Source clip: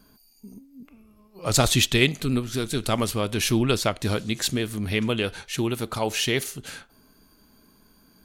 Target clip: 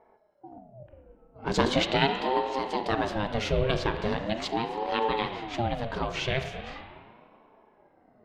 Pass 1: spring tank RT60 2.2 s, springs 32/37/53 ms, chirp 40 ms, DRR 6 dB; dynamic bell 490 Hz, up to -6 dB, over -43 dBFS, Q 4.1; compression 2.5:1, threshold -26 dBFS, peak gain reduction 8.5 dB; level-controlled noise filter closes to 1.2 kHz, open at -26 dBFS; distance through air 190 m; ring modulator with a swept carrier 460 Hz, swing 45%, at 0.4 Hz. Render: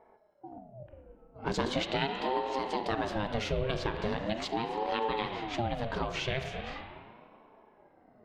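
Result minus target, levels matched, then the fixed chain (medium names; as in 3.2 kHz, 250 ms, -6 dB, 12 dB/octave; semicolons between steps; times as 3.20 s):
compression: peak gain reduction +8.5 dB
spring tank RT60 2.2 s, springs 32/37/53 ms, chirp 40 ms, DRR 6 dB; dynamic bell 490 Hz, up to -6 dB, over -43 dBFS, Q 4.1; level-controlled noise filter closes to 1.2 kHz, open at -26 dBFS; distance through air 190 m; ring modulator with a swept carrier 460 Hz, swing 45%, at 0.4 Hz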